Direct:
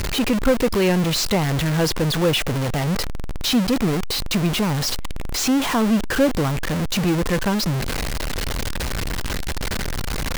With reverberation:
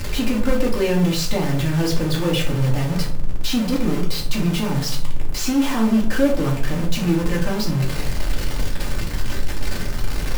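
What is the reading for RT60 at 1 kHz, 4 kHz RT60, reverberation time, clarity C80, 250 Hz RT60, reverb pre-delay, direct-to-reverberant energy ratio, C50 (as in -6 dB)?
0.45 s, 0.30 s, 0.55 s, 12.0 dB, 0.65 s, 3 ms, -3.0 dB, 8.0 dB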